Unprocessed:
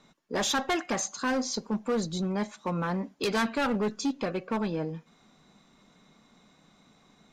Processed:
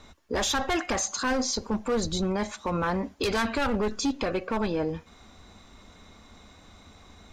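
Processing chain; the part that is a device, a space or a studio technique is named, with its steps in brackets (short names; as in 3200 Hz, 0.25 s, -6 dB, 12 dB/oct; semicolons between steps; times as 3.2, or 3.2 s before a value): car stereo with a boomy subwoofer (resonant low shelf 110 Hz +10.5 dB, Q 3; limiter -28 dBFS, peak gain reduction 9.5 dB); gain +8.5 dB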